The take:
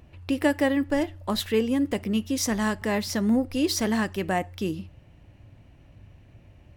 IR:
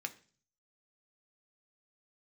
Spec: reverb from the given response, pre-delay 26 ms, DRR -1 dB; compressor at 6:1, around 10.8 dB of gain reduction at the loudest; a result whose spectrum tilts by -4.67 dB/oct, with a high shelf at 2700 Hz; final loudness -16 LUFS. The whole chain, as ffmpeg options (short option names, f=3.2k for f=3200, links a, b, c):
-filter_complex "[0:a]highshelf=f=2.7k:g=-5.5,acompressor=threshold=-30dB:ratio=6,asplit=2[a][b];[1:a]atrim=start_sample=2205,adelay=26[c];[b][c]afir=irnorm=-1:irlink=0,volume=1dB[d];[a][d]amix=inputs=2:normalize=0,volume=16dB"